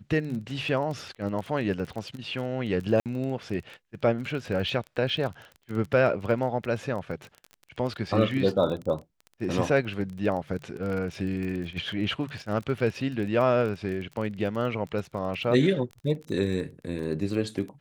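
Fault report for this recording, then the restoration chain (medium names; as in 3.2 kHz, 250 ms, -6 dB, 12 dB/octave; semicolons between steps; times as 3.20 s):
crackle 24 per s -33 dBFS
3.00–3.06 s: dropout 58 ms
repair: de-click; interpolate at 3.00 s, 58 ms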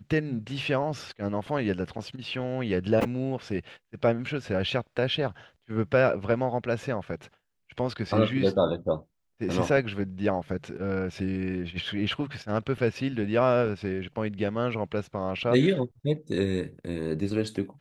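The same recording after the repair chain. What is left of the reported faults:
nothing left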